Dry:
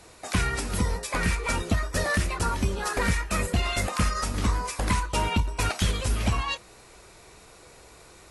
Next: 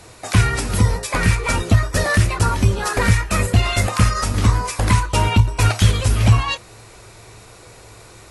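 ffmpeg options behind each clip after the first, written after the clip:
ffmpeg -i in.wav -af "equalizer=frequency=110:width=6.1:gain=14.5,volume=7dB" out.wav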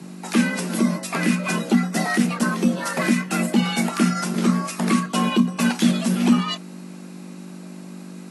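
ffmpeg -i in.wav -af "aeval=exprs='val(0)+0.0251*(sin(2*PI*50*n/s)+sin(2*PI*2*50*n/s)/2+sin(2*PI*3*50*n/s)/3+sin(2*PI*4*50*n/s)/4+sin(2*PI*5*50*n/s)/5)':channel_layout=same,afreqshift=130,volume=-4.5dB" out.wav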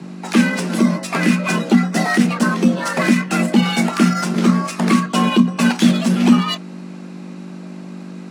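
ffmpeg -i in.wav -af "adynamicsmooth=sensitivity=6.5:basefreq=5200,volume=5dB" out.wav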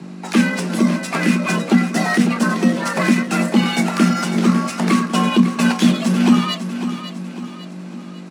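ffmpeg -i in.wav -af "aecho=1:1:551|1102|1653|2204|2755:0.299|0.134|0.0605|0.0272|0.0122,volume=-1dB" out.wav

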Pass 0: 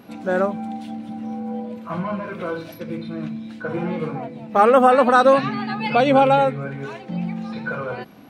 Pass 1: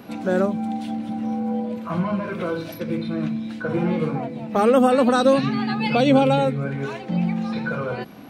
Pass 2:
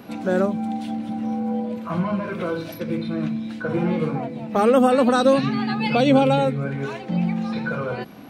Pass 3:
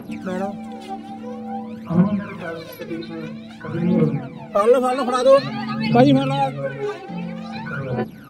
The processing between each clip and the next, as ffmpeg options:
ffmpeg -i in.wav -filter_complex "[0:a]acrossover=split=430|3000[link_01][link_02][link_03];[link_02]acompressor=threshold=-36dB:ratio=2[link_04];[link_01][link_04][link_03]amix=inputs=3:normalize=0,volume=4dB" out.wav
ffmpeg -i in.wav -af anull out.wav
ffmpeg -i in.wav -filter_complex "[0:a]asplit=2[link_01][link_02];[link_02]adelay=484,volume=-19dB,highshelf=frequency=4000:gain=-10.9[link_03];[link_01][link_03]amix=inputs=2:normalize=0,aphaser=in_gain=1:out_gain=1:delay=2.8:decay=0.73:speed=0.5:type=triangular,volume=-3dB" out.wav

